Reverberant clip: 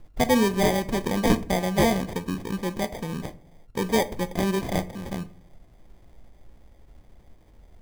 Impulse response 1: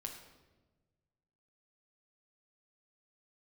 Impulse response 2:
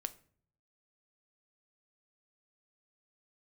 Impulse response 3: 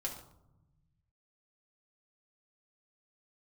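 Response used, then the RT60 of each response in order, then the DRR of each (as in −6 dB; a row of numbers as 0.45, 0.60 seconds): 2; 1.2, 0.55, 0.85 seconds; 1.5, 11.5, −2.5 decibels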